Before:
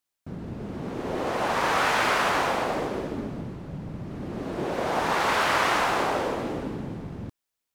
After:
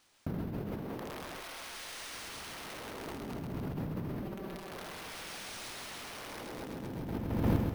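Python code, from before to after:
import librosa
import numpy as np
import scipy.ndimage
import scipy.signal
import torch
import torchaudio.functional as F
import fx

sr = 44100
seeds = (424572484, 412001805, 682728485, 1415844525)

y = (np.mod(10.0 ** (22.5 / 20.0) * x + 1.0, 2.0) - 1.0) / 10.0 ** (22.5 / 20.0)
y = fx.echo_feedback(y, sr, ms=133, feedback_pct=52, wet_db=-5.0)
y = np.repeat(scipy.signal.resample_poly(y, 1, 3), 3)[:len(y)]
y = fx.comb(y, sr, ms=5.2, depth=0.67, at=(4.23, 4.71))
y = fx.over_compress(y, sr, threshold_db=-46.0, ratio=-1.0)
y = fx.peak_eq(y, sr, hz=130.0, db=-10.5, octaves=1.9, at=(1.4, 2.13))
y = y * 10.0 ** (5.5 / 20.0)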